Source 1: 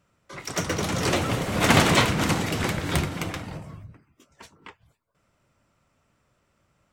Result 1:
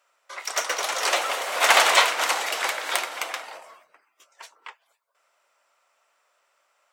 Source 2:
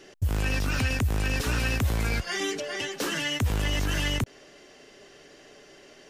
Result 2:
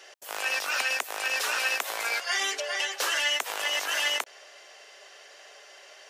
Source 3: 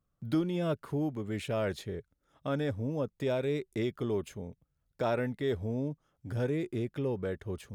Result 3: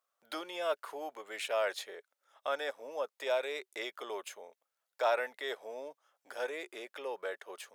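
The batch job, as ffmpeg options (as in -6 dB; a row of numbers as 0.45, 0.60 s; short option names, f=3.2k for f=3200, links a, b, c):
-af "highpass=f=600:w=0.5412,highpass=f=600:w=1.3066,volume=4dB"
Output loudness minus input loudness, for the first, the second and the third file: +1.5, +0.5, -3.5 LU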